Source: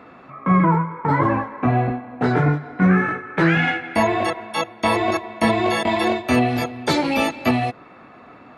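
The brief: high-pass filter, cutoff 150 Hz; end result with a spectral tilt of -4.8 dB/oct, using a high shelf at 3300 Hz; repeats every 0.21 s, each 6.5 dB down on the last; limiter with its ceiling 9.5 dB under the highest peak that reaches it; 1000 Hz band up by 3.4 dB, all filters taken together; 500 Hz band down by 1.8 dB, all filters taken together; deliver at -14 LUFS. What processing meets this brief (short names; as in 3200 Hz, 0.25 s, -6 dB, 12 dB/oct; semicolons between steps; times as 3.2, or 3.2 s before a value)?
HPF 150 Hz; bell 500 Hz -5 dB; bell 1000 Hz +5 dB; high shelf 3300 Hz +7.5 dB; limiter -12.5 dBFS; feedback echo 0.21 s, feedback 47%, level -6.5 dB; gain +7.5 dB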